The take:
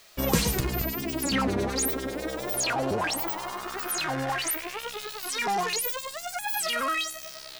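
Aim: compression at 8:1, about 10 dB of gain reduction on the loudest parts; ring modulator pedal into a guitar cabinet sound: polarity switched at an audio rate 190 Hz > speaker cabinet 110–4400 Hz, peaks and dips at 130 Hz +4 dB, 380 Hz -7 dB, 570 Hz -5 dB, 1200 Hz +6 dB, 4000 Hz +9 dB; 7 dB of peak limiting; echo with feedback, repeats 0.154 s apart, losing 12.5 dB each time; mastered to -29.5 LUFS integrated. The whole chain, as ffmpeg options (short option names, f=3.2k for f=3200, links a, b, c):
-af "acompressor=threshold=-28dB:ratio=8,alimiter=level_in=1dB:limit=-24dB:level=0:latency=1,volume=-1dB,aecho=1:1:154|308|462:0.237|0.0569|0.0137,aeval=exprs='val(0)*sgn(sin(2*PI*190*n/s))':c=same,highpass=110,equalizer=f=130:t=q:w=4:g=4,equalizer=f=380:t=q:w=4:g=-7,equalizer=f=570:t=q:w=4:g=-5,equalizer=f=1.2k:t=q:w=4:g=6,equalizer=f=4k:t=q:w=4:g=9,lowpass=f=4.4k:w=0.5412,lowpass=f=4.4k:w=1.3066,volume=4dB"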